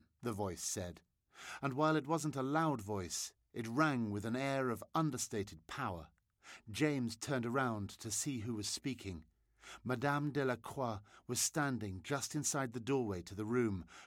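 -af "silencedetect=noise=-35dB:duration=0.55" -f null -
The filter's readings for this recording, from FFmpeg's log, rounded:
silence_start: 0.87
silence_end: 1.63 | silence_duration: 0.77
silence_start: 5.95
silence_end: 6.77 | silence_duration: 0.82
silence_start: 9.11
silence_end: 9.87 | silence_duration: 0.76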